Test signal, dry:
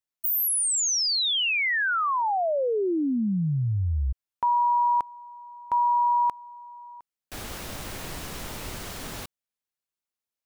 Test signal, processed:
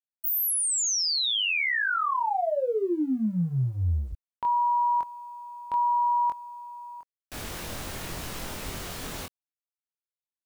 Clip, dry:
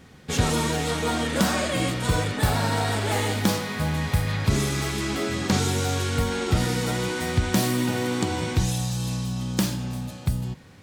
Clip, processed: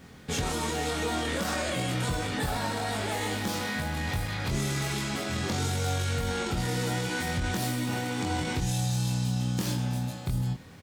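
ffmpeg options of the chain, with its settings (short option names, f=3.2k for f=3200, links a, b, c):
-filter_complex "[0:a]acompressor=threshold=-24dB:ratio=8:attack=0.47:release=41:knee=1:detection=rms,asplit=2[a][b];[b]adelay=23,volume=-3dB[c];[a][c]amix=inputs=2:normalize=0,acrusher=bits=10:mix=0:aa=0.000001,volume=-1.5dB"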